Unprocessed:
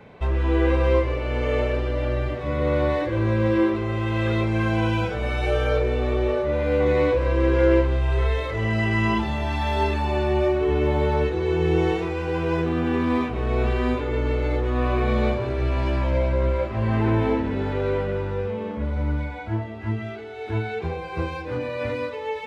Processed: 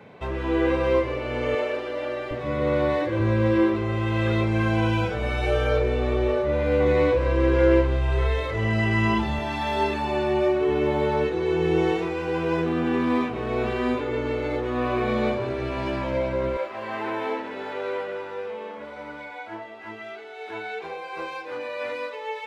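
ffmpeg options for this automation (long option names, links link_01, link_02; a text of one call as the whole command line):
ffmpeg -i in.wav -af "asetnsamples=nb_out_samples=441:pad=0,asendcmd='1.55 highpass f 370;2.31 highpass f 110;3.2 highpass f 52;9.39 highpass f 140;16.57 highpass f 540',highpass=120" out.wav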